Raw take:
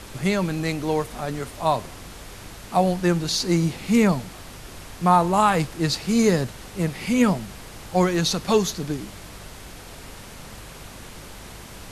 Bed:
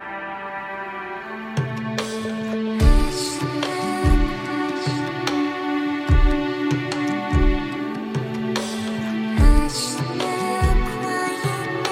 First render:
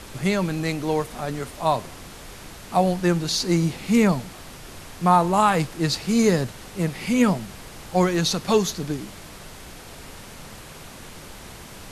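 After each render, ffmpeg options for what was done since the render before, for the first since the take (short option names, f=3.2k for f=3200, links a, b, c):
-af "bandreject=f=50:t=h:w=4,bandreject=f=100:t=h:w=4"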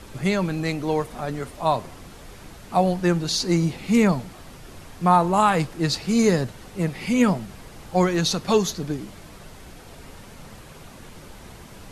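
-af "afftdn=nr=6:nf=-42"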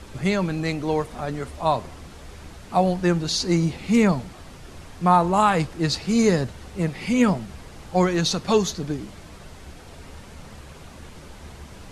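-af "lowpass=9.9k,equalizer=f=72:w=7.2:g=13"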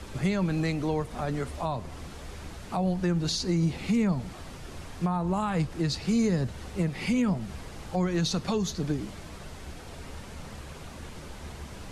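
-filter_complex "[0:a]acrossover=split=230[a][b];[b]acompressor=threshold=-30dB:ratio=2.5[c];[a][c]amix=inputs=2:normalize=0,alimiter=limit=-18dB:level=0:latency=1:release=144"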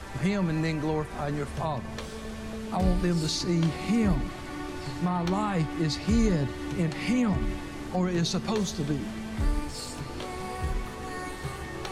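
-filter_complex "[1:a]volume=-13.5dB[a];[0:a][a]amix=inputs=2:normalize=0"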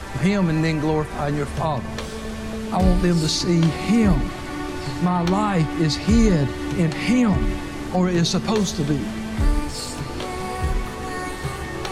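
-af "volume=7.5dB"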